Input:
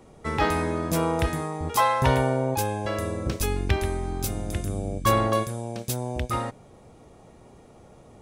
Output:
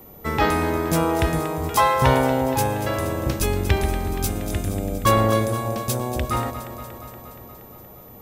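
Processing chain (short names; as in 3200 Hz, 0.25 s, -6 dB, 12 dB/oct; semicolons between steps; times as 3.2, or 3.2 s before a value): echo with dull and thin repeats by turns 0.118 s, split 880 Hz, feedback 83%, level -10 dB; whine 14000 Hz -49 dBFS; gain +3.5 dB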